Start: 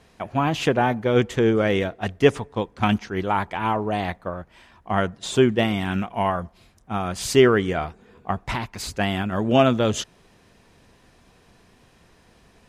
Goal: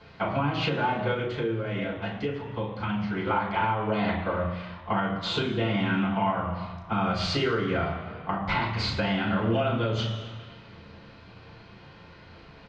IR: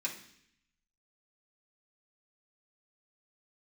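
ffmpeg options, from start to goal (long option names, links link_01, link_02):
-filter_complex "[0:a]acompressor=threshold=-26dB:ratio=3,lowpass=frequency=4400:width=0.5412,lowpass=frequency=4400:width=1.3066,asplit=2[link_01][link_02];[link_02]adelay=35,volume=-6dB[link_03];[link_01][link_03]amix=inputs=2:normalize=0[link_04];[1:a]atrim=start_sample=2205,asetrate=25137,aresample=44100[link_05];[link_04][link_05]afir=irnorm=-1:irlink=0,alimiter=limit=-16dB:level=0:latency=1:release=408,asplit=3[link_06][link_07][link_08];[link_06]afade=type=out:start_time=1.13:duration=0.02[link_09];[link_07]flanger=delay=0.9:depth=8.2:regen=-73:speed=1.7:shape=sinusoidal,afade=type=in:start_time=1.13:duration=0.02,afade=type=out:start_time=3.26:duration=0.02[link_10];[link_08]afade=type=in:start_time=3.26:duration=0.02[link_11];[link_09][link_10][link_11]amix=inputs=3:normalize=0"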